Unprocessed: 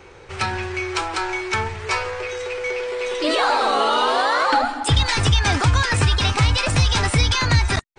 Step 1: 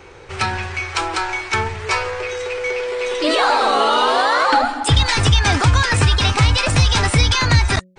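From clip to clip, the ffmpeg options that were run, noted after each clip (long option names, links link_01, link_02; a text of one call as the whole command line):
ffmpeg -i in.wav -af "bandreject=frequency=184.2:width_type=h:width=4,bandreject=frequency=368.4:width_type=h:width=4,bandreject=frequency=552.6:width_type=h:width=4,volume=3dB" out.wav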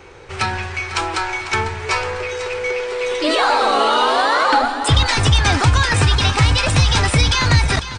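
ffmpeg -i in.wav -af "aecho=1:1:498|996|1494|1992|2490:0.224|0.119|0.0629|0.0333|0.0177" out.wav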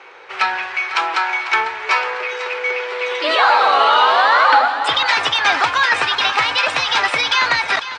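ffmpeg -i in.wav -af "highpass=750,lowpass=3300,volume=5dB" out.wav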